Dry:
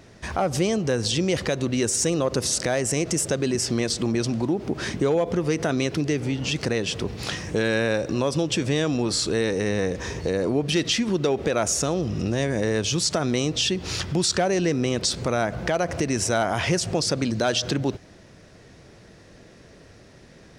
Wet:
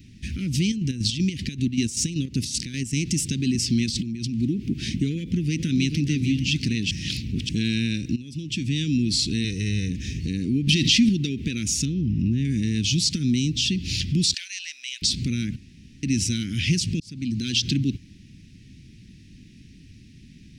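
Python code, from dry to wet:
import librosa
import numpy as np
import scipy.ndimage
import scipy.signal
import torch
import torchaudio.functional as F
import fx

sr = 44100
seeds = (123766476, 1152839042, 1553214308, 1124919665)

y = fx.chopper(x, sr, hz=5.2, depth_pct=60, duty_pct=50, at=(0.62, 2.97))
y = fx.over_compress(y, sr, threshold_db=-31.0, ratio=-1.0, at=(3.86, 4.4))
y = fx.echo_throw(y, sr, start_s=5.14, length_s=0.81, ms=440, feedback_pct=40, wet_db=-7.5)
y = fx.comb(y, sr, ms=2.0, depth=0.65, at=(9.44, 9.89))
y = fx.env_flatten(y, sr, amount_pct=70, at=(10.67, 11.09))
y = fx.lowpass(y, sr, hz=1200.0, slope=6, at=(11.85, 12.45))
y = fx.peak_eq(y, sr, hz=2300.0, db=-4.0, octaves=2.2, at=(13.16, 13.7))
y = fx.highpass(y, sr, hz=1300.0, slope=24, at=(14.34, 15.02))
y = fx.edit(y, sr, fx.reverse_span(start_s=6.91, length_s=0.58),
    fx.fade_in_from(start_s=8.16, length_s=0.78, floor_db=-18.0),
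    fx.room_tone_fill(start_s=15.56, length_s=0.47),
    fx.fade_in_span(start_s=17.0, length_s=0.54), tone=tone)
y = fx.dynamic_eq(y, sr, hz=4500.0, q=1.3, threshold_db=-38.0, ratio=4.0, max_db=5)
y = scipy.signal.sosfilt(scipy.signal.ellip(3, 1.0, 70, [260.0, 2500.0], 'bandstop', fs=sr, output='sos'), y)
y = fx.peak_eq(y, sr, hz=8600.0, db=-8.0, octaves=2.5)
y = y * 10.0 ** (5.0 / 20.0)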